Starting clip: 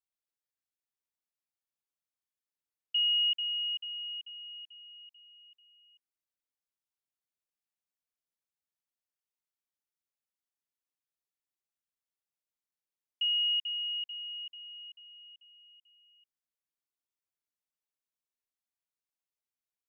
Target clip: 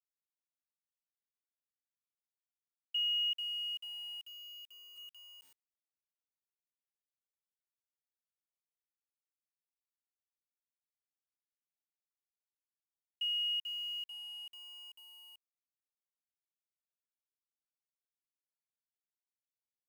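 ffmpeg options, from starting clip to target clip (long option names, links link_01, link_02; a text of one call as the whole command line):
ffmpeg -i in.wav -filter_complex "[0:a]asplit=3[link_01][link_02][link_03];[link_01]afade=type=out:start_time=4.96:duration=0.02[link_04];[link_02]lowpass=frequency=2700:width_type=q:width=2.3,afade=type=in:start_time=4.96:duration=0.02,afade=type=out:start_time=5.4:duration=0.02[link_05];[link_03]afade=type=in:start_time=5.4:duration=0.02[link_06];[link_04][link_05][link_06]amix=inputs=3:normalize=0,acrusher=bits=8:mix=0:aa=0.000001,volume=-5.5dB" out.wav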